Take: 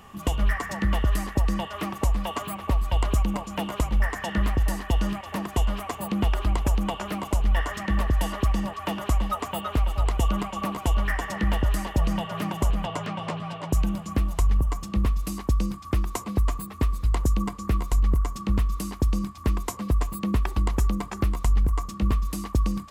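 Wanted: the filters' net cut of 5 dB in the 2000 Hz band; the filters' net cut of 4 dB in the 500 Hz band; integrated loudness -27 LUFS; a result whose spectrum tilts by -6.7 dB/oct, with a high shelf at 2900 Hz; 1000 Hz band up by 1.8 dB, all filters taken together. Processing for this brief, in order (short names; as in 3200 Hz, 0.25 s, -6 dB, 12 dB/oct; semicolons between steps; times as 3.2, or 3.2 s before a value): bell 500 Hz -7 dB; bell 1000 Hz +6 dB; bell 2000 Hz -6.5 dB; high shelf 2900 Hz -3 dB; gain +0.5 dB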